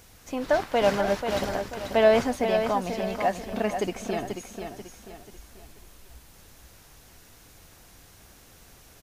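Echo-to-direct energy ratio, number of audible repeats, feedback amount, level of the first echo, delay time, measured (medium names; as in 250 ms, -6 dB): -6.5 dB, 4, 38%, -7.0 dB, 487 ms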